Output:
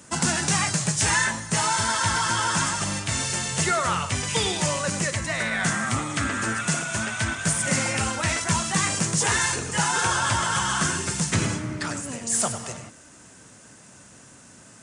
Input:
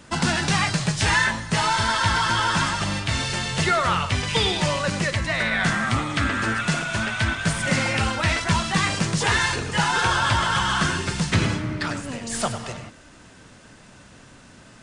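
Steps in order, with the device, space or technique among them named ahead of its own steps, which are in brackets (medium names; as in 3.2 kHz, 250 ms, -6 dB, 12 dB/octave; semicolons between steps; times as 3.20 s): budget condenser microphone (high-pass 83 Hz; resonant high shelf 5.4 kHz +8.5 dB, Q 1.5); trim -2.5 dB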